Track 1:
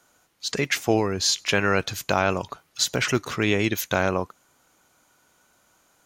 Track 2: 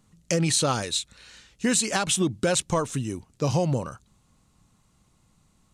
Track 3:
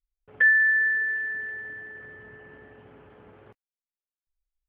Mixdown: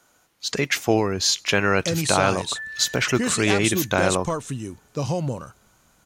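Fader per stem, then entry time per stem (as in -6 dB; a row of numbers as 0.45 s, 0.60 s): +1.5 dB, -1.5 dB, -16.5 dB; 0.00 s, 1.55 s, 2.15 s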